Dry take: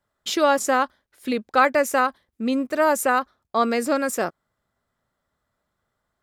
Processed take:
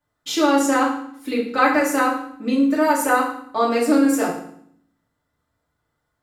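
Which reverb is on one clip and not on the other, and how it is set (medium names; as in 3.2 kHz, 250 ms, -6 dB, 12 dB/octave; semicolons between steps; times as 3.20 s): FDN reverb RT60 0.62 s, low-frequency decay 1.5×, high-frequency decay 0.95×, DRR -5 dB; trim -4.5 dB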